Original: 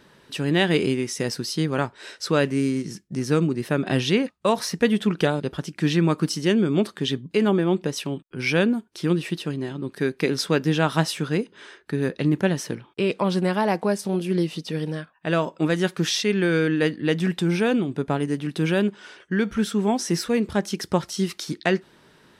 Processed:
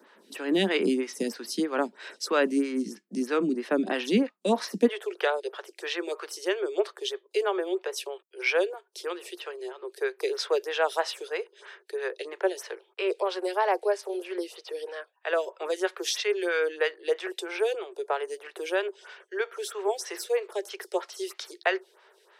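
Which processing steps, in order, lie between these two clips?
steep high-pass 190 Hz 96 dB/oct, from 4.87 s 370 Hz; photocell phaser 3.1 Hz

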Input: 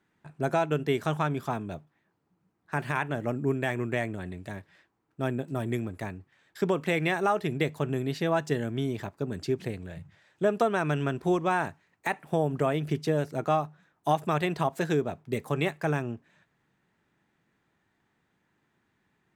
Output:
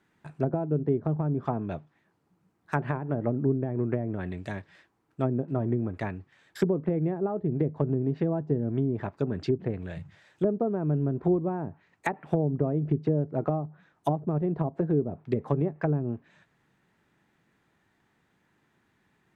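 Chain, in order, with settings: treble ducked by the level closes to 390 Hz, closed at -24.5 dBFS; gain +3.5 dB

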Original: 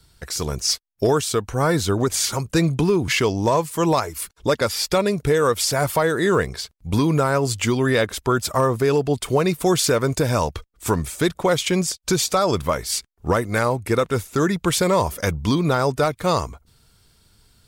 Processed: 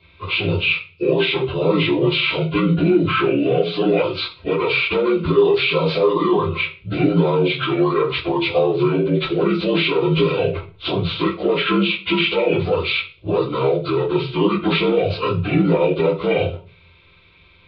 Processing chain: inharmonic rescaling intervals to 76%; fixed phaser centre 1200 Hz, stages 8; limiter -21.5 dBFS, peak gain reduction 10.5 dB; reverb RT60 0.35 s, pre-delay 3 ms, DRR -6 dB; gain +3.5 dB

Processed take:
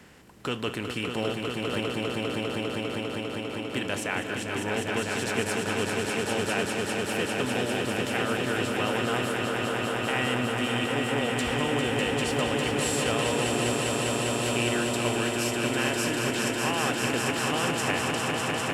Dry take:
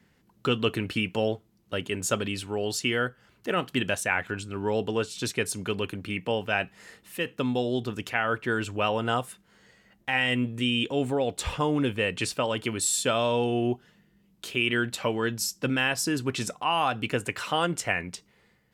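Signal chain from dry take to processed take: per-bin compression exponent 0.6; 1.8–3.74 vowel filter u; swelling echo 0.2 s, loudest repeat 5, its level -5 dB; gain -8.5 dB

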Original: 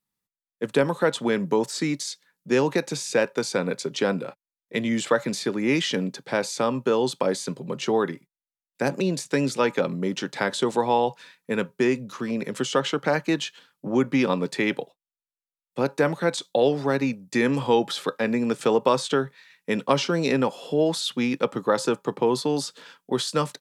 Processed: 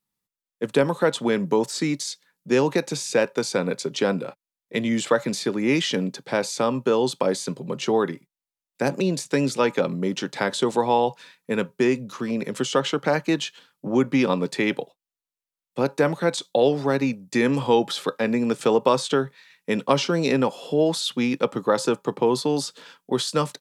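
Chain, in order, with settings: bell 1700 Hz -2 dB; gain +1.5 dB

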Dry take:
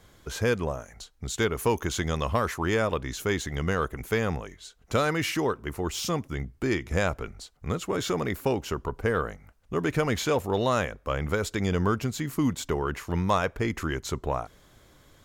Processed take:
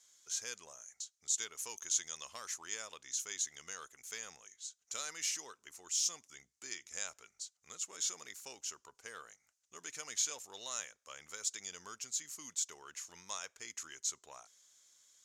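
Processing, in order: band-pass 6600 Hz, Q 3.4; gain +5 dB

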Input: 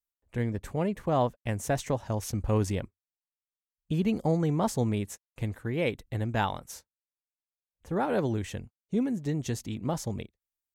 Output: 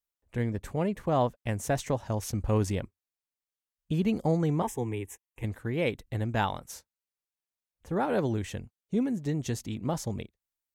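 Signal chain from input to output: 4.62–5.44 fixed phaser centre 900 Hz, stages 8

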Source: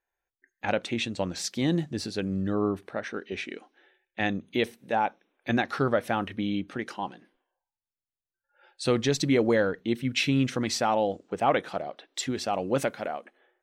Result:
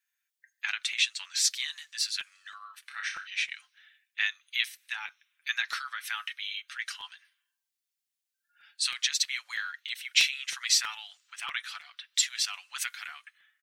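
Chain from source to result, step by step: comb 6.9 ms, depth 49%; compressor 2.5:1, threshold -24 dBFS, peak gain reduction 6.5 dB; Bessel high-pass 2400 Hz, order 8; 2.87–3.27 flutter echo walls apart 5.2 m, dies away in 0.31 s; crackling interface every 0.32 s, samples 256, repeat, from 0.92; gain +8 dB

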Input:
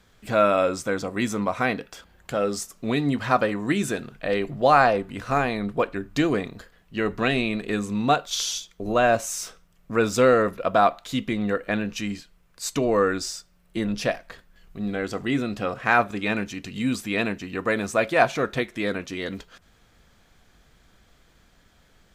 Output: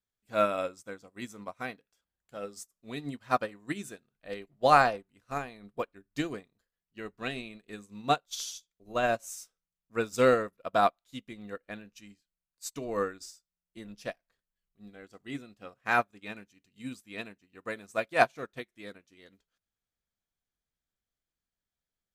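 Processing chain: high shelf 5300 Hz +10.5 dB; upward expander 2.5:1, over -36 dBFS; gain -2.5 dB

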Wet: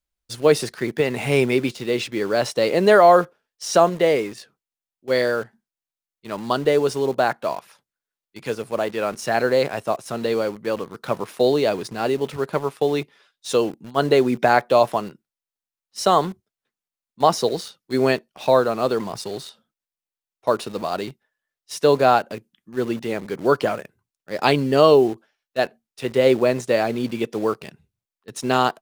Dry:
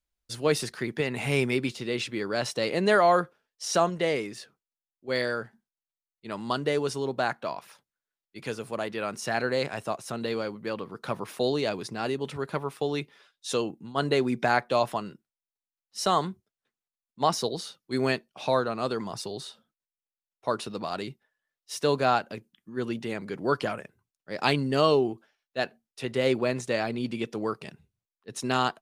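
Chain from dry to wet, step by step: dynamic EQ 530 Hz, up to +6 dB, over -37 dBFS, Q 0.79; in parallel at -8.5 dB: bit-crush 6-bit; on the sum: gain +1 dB

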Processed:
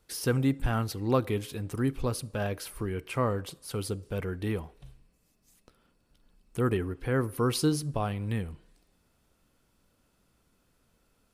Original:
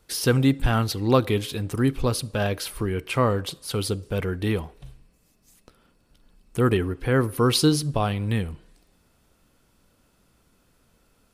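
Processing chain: dynamic EQ 3700 Hz, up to -6 dB, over -45 dBFS, Q 1.5; gain -6.5 dB

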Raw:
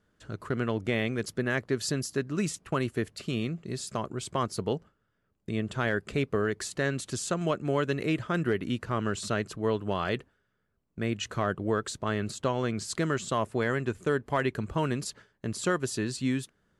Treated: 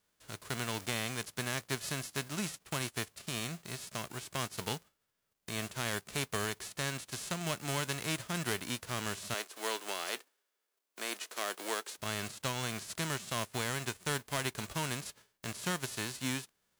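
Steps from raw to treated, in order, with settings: spectral whitening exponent 0.3; 9.34–11.98 HPF 300 Hz 24 dB/oct; gain -7.5 dB

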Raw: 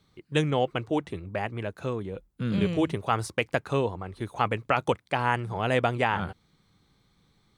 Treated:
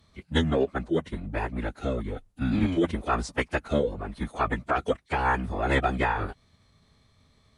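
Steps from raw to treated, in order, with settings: in parallel at -1 dB: compressor, threshold -36 dBFS, peak gain reduction 16.5 dB; on the sum: formant-preserving pitch shift -11 st

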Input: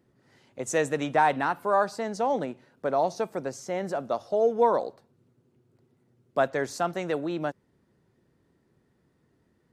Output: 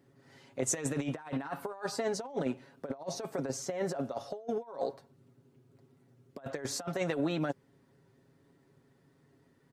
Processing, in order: low shelf 77 Hz -6 dB; comb 7.3 ms, depth 61%; negative-ratio compressor -30 dBFS, ratio -0.5; gain -4 dB

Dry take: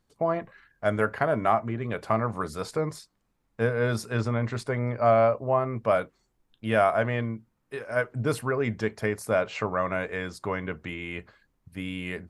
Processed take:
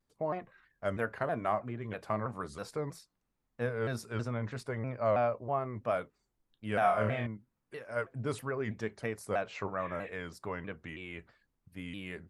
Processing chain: 6.79–7.27 flutter echo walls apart 4.5 m, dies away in 0.53 s; 9.83–10.07 spectral repair 1500–4600 Hz after; shaped vibrato saw down 3.1 Hz, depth 160 cents; gain -8.5 dB

